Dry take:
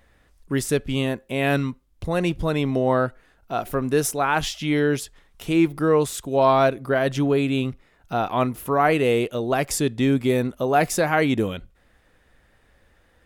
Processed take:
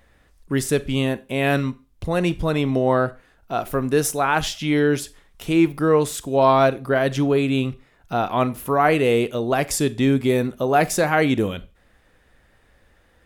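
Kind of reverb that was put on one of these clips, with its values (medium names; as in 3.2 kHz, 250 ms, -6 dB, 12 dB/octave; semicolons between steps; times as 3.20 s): Schroeder reverb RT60 0.32 s, combs from 30 ms, DRR 17 dB; trim +1.5 dB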